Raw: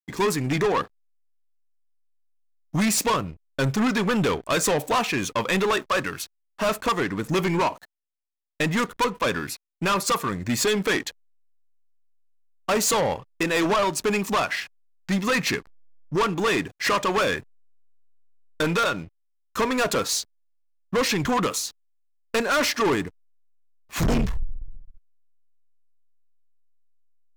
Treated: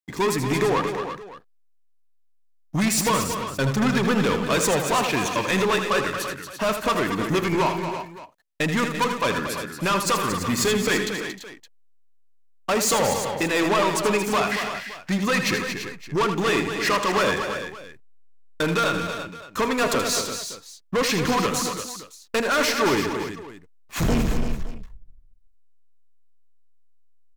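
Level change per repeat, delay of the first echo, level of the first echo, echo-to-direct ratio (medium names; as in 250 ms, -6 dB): no regular repeats, 80 ms, -8.5 dB, -3.5 dB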